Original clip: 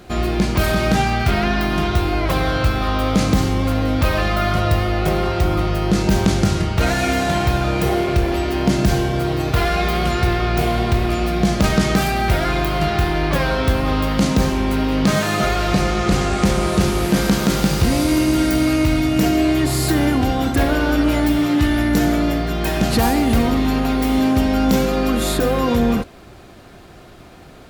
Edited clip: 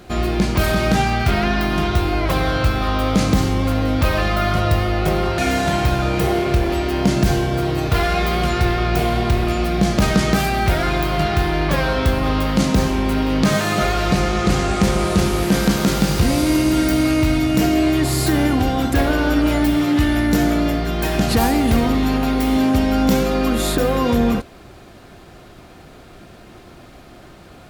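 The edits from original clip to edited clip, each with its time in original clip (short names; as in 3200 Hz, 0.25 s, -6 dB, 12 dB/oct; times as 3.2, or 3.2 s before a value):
5.38–7 cut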